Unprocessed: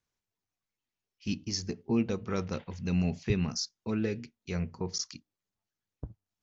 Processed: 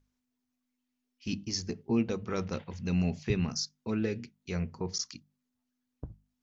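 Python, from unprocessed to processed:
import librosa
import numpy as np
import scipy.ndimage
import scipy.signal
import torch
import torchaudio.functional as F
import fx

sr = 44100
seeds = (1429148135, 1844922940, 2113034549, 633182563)

y = fx.add_hum(x, sr, base_hz=50, snr_db=34)
y = fx.hum_notches(y, sr, base_hz=50, count=4)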